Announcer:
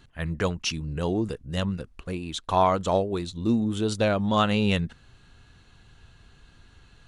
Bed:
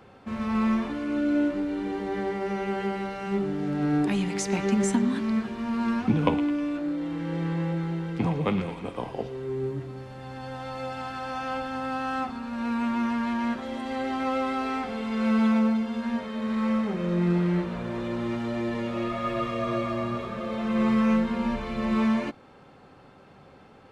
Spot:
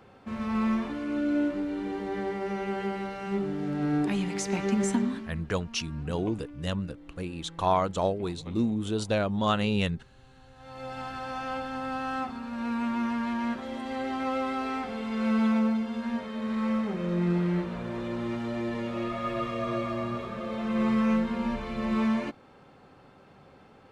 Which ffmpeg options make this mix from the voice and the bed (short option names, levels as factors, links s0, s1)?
-filter_complex "[0:a]adelay=5100,volume=0.668[s0];[1:a]volume=5.31,afade=t=out:st=5.01:d=0.31:silence=0.141254,afade=t=in:st=10.55:d=0.44:silence=0.141254[s1];[s0][s1]amix=inputs=2:normalize=0"